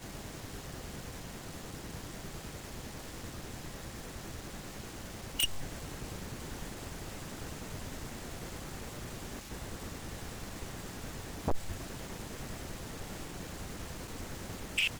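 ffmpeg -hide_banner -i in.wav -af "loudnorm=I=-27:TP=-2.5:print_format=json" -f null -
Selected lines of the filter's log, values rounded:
"input_i" : "-41.0",
"input_tp" : "-21.4",
"input_lra" : "5.6",
"input_thresh" : "-51.0",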